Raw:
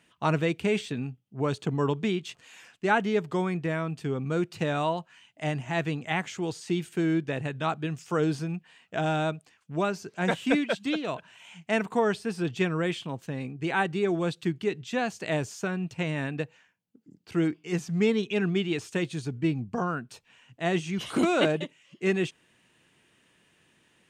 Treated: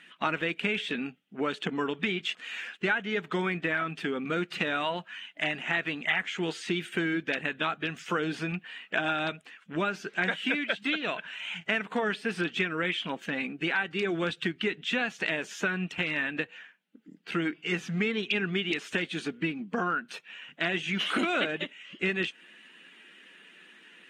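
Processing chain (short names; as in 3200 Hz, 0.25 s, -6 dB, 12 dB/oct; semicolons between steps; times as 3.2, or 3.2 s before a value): bin magnitudes rounded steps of 15 dB; band shelf 2200 Hz +11.5 dB; compressor 6:1, threshold -29 dBFS, peak gain reduction 17 dB; brick-wall FIR high-pass 160 Hz; high shelf 5800 Hz -6 dB; gain +3.5 dB; AAC 48 kbps 44100 Hz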